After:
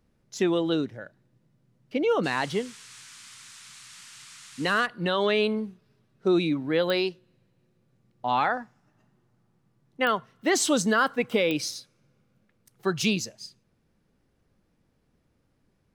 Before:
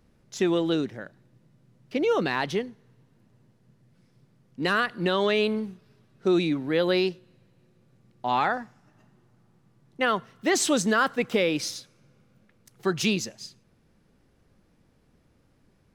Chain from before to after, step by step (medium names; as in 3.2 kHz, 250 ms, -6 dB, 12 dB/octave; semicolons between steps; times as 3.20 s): spectral noise reduction 6 dB; 2.23–4.85 s: band noise 1.1–9 kHz -48 dBFS; clicks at 6.90/10.07/11.51 s, -16 dBFS